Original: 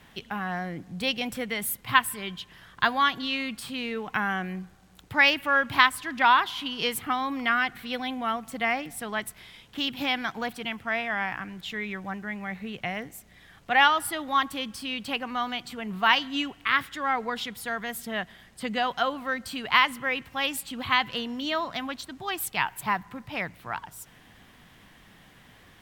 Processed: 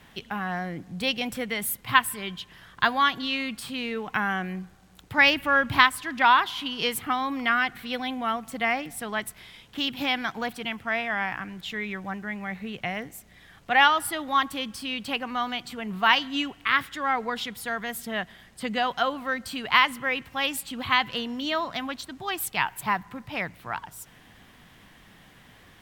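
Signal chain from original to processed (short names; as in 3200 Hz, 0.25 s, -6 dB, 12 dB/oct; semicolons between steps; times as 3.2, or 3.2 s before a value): 5.18–5.85 low shelf 190 Hz +9 dB; gain +1 dB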